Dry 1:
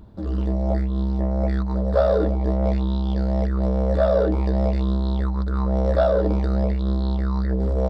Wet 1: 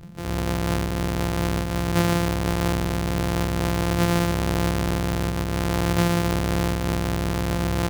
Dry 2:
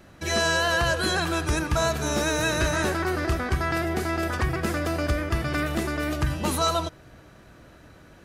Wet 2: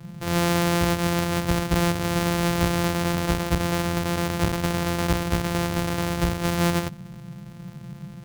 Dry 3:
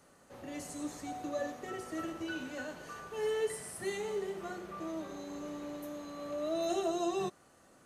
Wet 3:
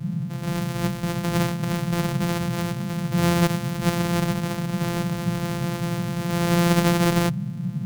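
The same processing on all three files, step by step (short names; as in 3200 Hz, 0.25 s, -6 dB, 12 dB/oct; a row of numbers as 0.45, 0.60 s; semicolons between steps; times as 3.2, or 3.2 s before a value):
sample sorter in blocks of 256 samples; band noise 120–200 Hz -41 dBFS; match loudness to -24 LUFS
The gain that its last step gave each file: -3.0, +1.5, +13.0 dB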